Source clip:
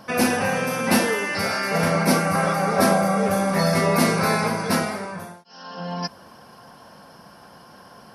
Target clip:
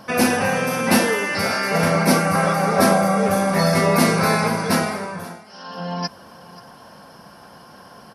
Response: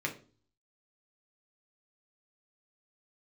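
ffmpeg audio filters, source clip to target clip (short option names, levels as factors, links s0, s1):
-af "aecho=1:1:532:0.0944,volume=1.33"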